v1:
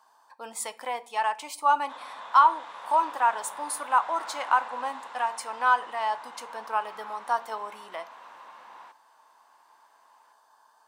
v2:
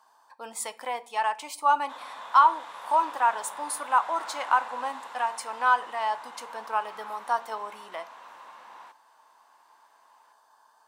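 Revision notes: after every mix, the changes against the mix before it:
background: remove air absorption 50 m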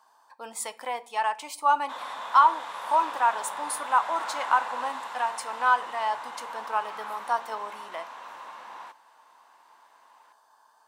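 background +5.0 dB

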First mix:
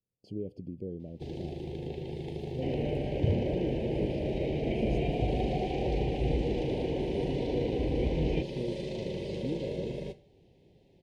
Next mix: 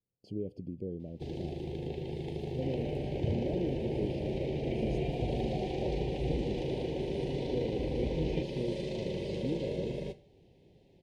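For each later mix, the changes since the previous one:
second sound -5.5 dB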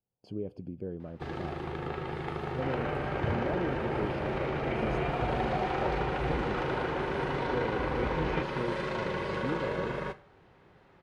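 master: remove Butterworth band-stop 1300 Hz, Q 0.51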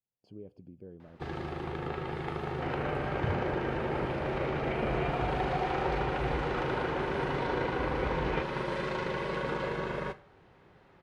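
speech -10.0 dB

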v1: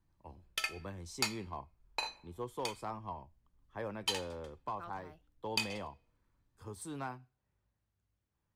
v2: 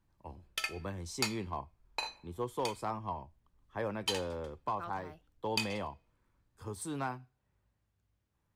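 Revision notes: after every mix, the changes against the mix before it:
speech +4.5 dB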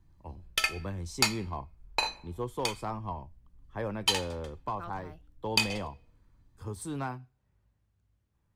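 background +8.0 dB; master: add low shelf 210 Hz +7 dB

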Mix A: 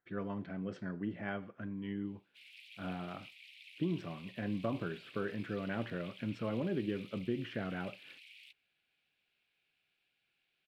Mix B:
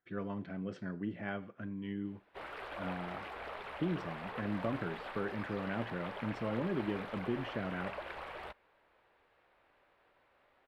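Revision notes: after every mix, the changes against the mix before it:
background: remove steep high-pass 2300 Hz 72 dB/oct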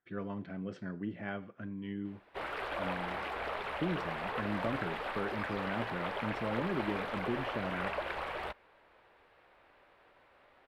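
background +6.5 dB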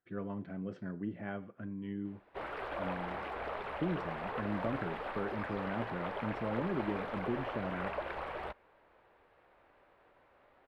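master: add high shelf 2100 Hz -10 dB

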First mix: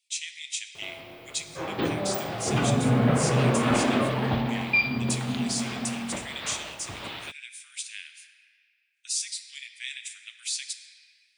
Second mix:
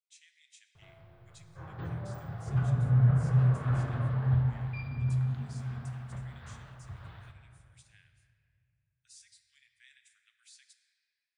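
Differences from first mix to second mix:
background: send on; master: add EQ curve 130 Hz 0 dB, 250 Hz -24 dB, 1600 Hz -13 dB, 2400 Hz -26 dB

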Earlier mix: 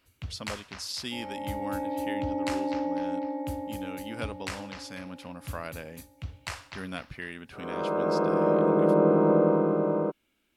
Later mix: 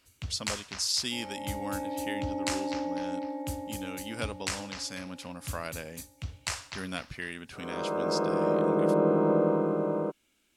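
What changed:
second sound -3.0 dB; master: add bell 7200 Hz +10 dB 1.5 oct

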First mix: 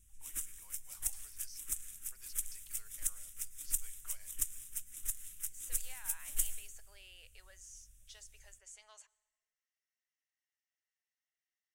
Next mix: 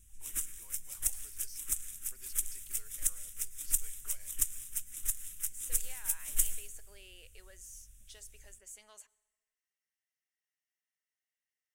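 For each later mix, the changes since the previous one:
speech: remove Chebyshev band-pass 740–6500 Hz, order 2; background +4.5 dB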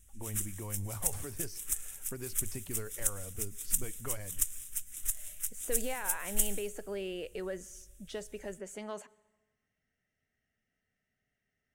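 speech: remove differentiator

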